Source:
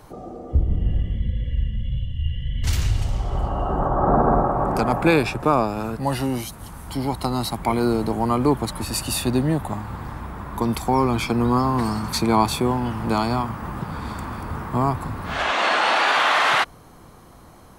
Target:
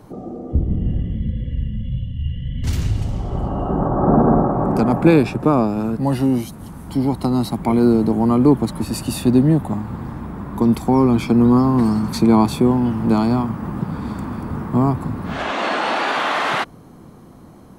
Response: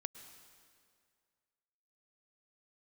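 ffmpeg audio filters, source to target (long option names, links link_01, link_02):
-af "equalizer=frequency=220:width=0.54:gain=13,volume=-4dB"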